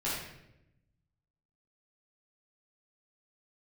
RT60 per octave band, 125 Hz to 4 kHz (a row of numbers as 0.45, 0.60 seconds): 1.6, 1.3, 1.0, 0.70, 0.80, 0.65 seconds